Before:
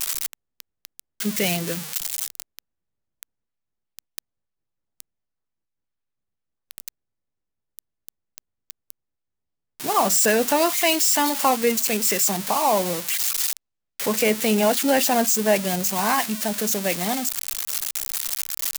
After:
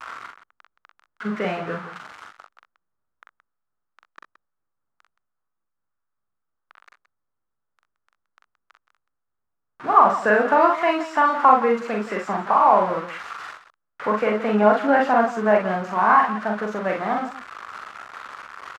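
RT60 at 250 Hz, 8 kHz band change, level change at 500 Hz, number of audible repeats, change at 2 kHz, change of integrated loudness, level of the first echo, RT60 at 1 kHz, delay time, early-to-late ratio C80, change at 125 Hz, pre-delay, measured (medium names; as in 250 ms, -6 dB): no reverb, under -25 dB, +2.0 dB, 2, +2.5 dB, +1.5 dB, -3.0 dB, no reverb, 43 ms, no reverb, no reading, no reverb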